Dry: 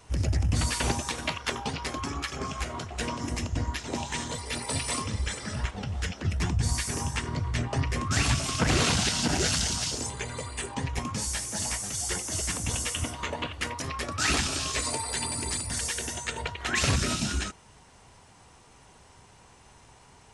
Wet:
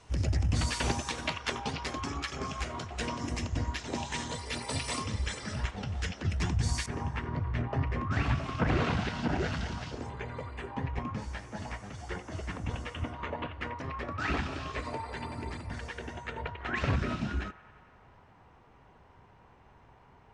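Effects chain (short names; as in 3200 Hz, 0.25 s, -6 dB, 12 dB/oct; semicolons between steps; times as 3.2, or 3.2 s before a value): LPF 7000 Hz 12 dB/oct, from 6.86 s 1900 Hz; band-limited delay 90 ms, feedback 78%, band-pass 1300 Hz, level -18.5 dB; gain -2.5 dB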